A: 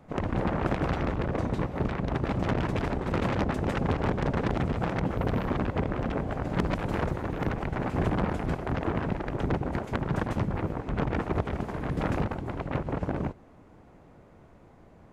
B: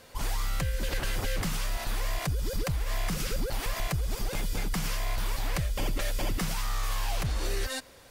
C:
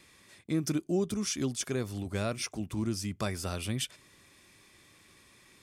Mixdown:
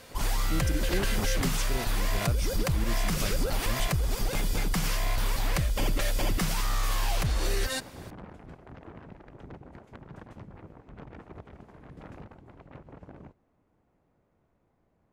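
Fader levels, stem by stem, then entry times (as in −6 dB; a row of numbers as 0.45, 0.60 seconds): −17.5, +2.5, −4.0 decibels; 0.00, 0.00, 0.00 seconds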